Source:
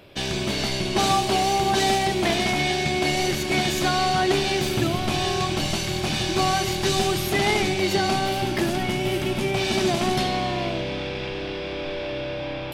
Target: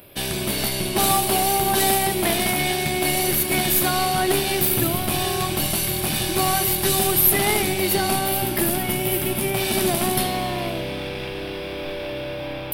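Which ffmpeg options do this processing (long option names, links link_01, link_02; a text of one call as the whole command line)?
ffmpeg -i in.wav -af "aexciter=amount=12.7:drive=4.3:freq=9400,aeval=exprs='0.631*(cos(1*acos(clip(val(0)/0.631,-1,1)))-cos(1*PI/2))+0.0316*(cos(6*acos(clip(val(0)/0.631,-1,1)))-cos(6*PI/2))':channel_layout=same" out.wav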